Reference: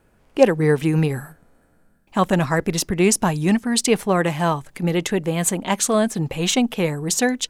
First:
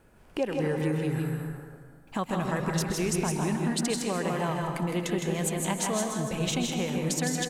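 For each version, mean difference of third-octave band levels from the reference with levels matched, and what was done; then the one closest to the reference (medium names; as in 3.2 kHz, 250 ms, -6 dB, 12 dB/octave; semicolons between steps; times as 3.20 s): 8.5 dB: compression 2.5:1, threshold -34 dBFS, peak gain reduction 17 dB; delay 161 ms -4.5 dB; plate-style reverb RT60 1.6 s, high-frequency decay 0.55×, pre-delay 115 ms, DRR 3.5 dB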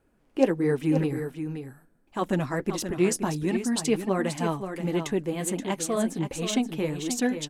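4.5 dB: peaking EQ 300 Hz +8 dB 0.78 oct; flange 1.4 Hz, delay 1.3 ms, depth 8.3 ms, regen -34%; delay 527 ms -8.5 dB; trim -6.5 dB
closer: second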